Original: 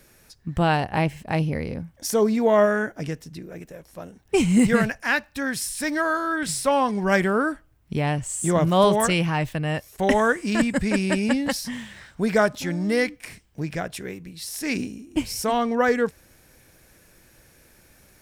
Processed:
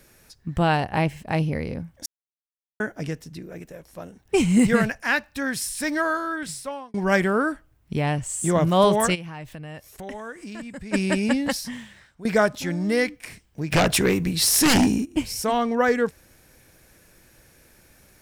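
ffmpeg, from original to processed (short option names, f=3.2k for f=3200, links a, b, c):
-filter_complex "[0:a]asplit=3[a][b][c];[a]afade=t=out:st=9.14:d=0.02[d];[b]acompressor=threshold=-38dB:ratio=3:attack=3.2:release=140:knee=1:detection=peak,afade=t=in:st=9.14:d=0.02,afade=t=out:st=10.92:d=0.02[e];[c]afade=t=in:st=10.92:d=0.02[f];[d][e][f]amix=inputs=3:normalize=0,asplit=3[g][h][i];[g]afade=t=out:st=13.71:d=0.02[j];[h]aeval=exprs='0.211*sin(PI/2*3.98*val(0)/0.211)':c=same,afade=t=in:st=13.71:d=0.02,afade=t=out:st=15.04:d=0.02[k];[i]afade=t=in:st=15.04:d=0.02[l];[j][k][l]amix=inputs=3:normalize=0,asplit=5[m][n][o][p][q];[m]atrim=end=2.06,asetpts=PTS-STARTPTS,afade=t=out:st=2.056:d=0.004:c=hsin[r];[n]atrim=start=2.06:end=2.8,asetpts=PTS-STARTPTS,volume=0[s];[o]atrim=start=2.8:end=6.94,asetpts=PTS-STARTPTS,afade=t=in:d=0.004:c=hsin,afade=t=out:st=3.23:d=0.91[t];[p]atrim=start=6.94:end=12.25,asetpts=PTS-STARTPTS,afade=t=in:d=0.004:c=hsin,afade=t=out:st=4.59:d=0.72:silence=0.125893[u];[q]atrim=start=12.25,asetpts=PTS-STARTPTS,afade=t=in:d=0.004:c=hsin:silence=0.125893[v];[r][s][t][u][v]concat=n=5:v=0:a=1"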